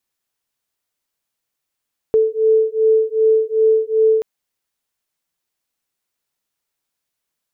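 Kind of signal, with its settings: beating tones 439 Hz, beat 2.6 Hz, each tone -15 dBFS 2.08 s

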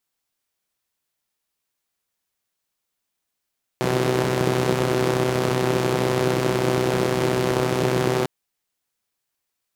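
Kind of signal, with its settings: four-cylinder engine model, steady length 4.45 s, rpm 3800, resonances 170/340 Hz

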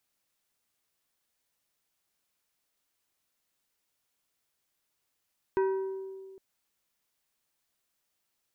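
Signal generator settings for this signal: glass hit plate, length 0.81 s, lowest mode 384 Hz, decay 1.93 s, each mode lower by 8 dB, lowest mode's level -22.5 dB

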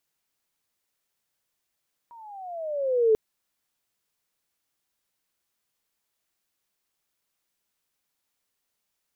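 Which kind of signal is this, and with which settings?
gliding synth tone sine, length 1.04 s, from 959 Hz, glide -14 st, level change +29.5 dB, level -15 dB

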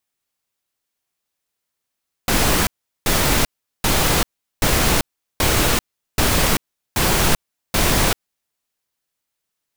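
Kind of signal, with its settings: noise bursts pink, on 0.39 s, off 0.39 s, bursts 8, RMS -16.5 dBFS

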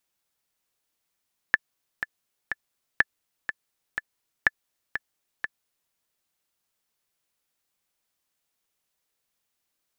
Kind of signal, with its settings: metronome 123 bpm, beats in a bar 3, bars 3, 1740 Hz, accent 10 dB -4.5 dBFS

